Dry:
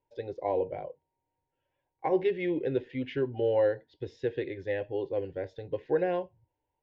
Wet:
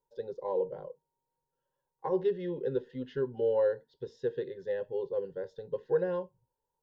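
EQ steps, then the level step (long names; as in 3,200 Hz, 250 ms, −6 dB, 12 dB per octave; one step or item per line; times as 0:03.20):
phaser with its sweep stopped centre 460 Hz, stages 8
0.0 dB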